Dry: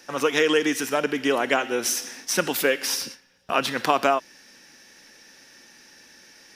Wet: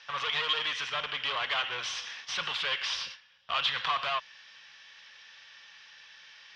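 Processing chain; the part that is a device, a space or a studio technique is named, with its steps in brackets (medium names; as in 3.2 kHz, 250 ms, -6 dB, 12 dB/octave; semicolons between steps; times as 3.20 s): scooped metal amplifier (valve stage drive 27 dB, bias 0.55; cabinet simulation 97–4000 Hz, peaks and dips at 240 Hz -5 dB, 1.1 kHz +9 dB, 3.2 kHz +8 dB; amplifier tone stack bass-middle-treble 10-0-10); trim +6 dB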